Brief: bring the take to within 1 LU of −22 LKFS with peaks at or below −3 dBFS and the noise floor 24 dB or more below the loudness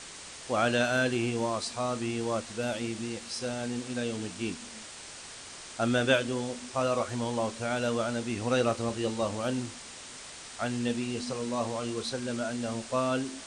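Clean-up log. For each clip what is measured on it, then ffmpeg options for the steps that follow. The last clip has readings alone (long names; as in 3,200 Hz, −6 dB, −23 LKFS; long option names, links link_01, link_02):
background noise floor −45 dBFS; target noise floor −55 dBFS; integrated loudness −31.0 LKFS; sample peak −11.0 dBFS; target loudness −22.0 LKFS
→ -af "afftdn=noise_reduction=10:noise_floor=-45"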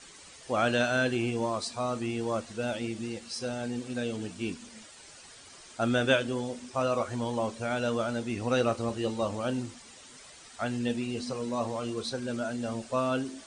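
background noise floor −51 dBFS; target noise floor −55 dBFS
→ -af "afftdn=noise_reduction=6:noise_floor=-51"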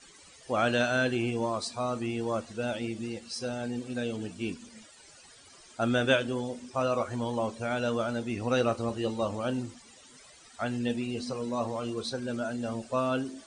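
background noise floor −55 dBFS; integrated loudness −31.0 LKFS; sample peak −11.0 dBFS; target loudness −22.0 LKFS
→ -af "volume=9dB,alimiter=limit=-3dB:level=0:latency=1"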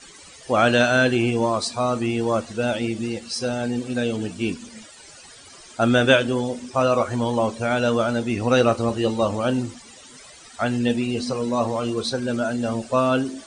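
integrated loudness −22.0 LKFS; sample peak −3.0 dBFS; background noise floor −46 dBFS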